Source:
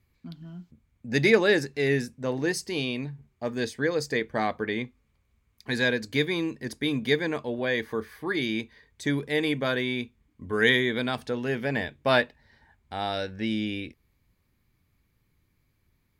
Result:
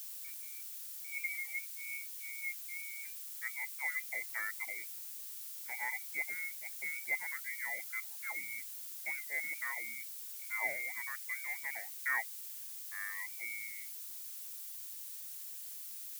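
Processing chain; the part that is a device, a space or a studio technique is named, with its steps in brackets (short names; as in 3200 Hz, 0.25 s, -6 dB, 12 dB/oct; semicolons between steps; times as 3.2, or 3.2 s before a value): spectral gain 0.32–3.04, 370–2600 Hz -27 dB; reverb removal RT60 0.65 s; scrambled radio voice (BPF 310–2700 Hz; inverted band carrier 2500 Hz; white noise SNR 17 dB); differentiator; gain +1 dB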